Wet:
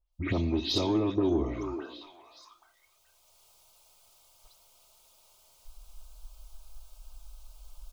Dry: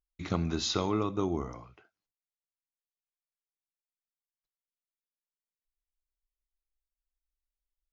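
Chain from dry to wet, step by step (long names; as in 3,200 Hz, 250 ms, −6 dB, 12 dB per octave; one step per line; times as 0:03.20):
every frequency bin delayed by itself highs late, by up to 120 ms
camcorder AGC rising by 14 dB per second
phaser swept by the level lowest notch 290 Hz, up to 1,500 Hz, full sweep at −29.5 dBFS
in parallel at +2 dB: downward compressor, threshold −44 dBFS, peak gain reduction 17 dB
on the sum: high-shelf EQ 6,100 Hz −8 dB
comb filter 3.2 ms, depth 47%
on a send at −23.5 dB: convolution reverb RT60 1.3 s, pre-delay 51 ms
on the sum: soft clipping −20.5 dBFS, distortion −20 dB
parametric band 170 Hz −5 dB 0.77 octaves
echo through a band-pass that steps 416 ms, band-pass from 380 Hz, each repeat 1.4 octaves, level −8.5 dB
level +3 dB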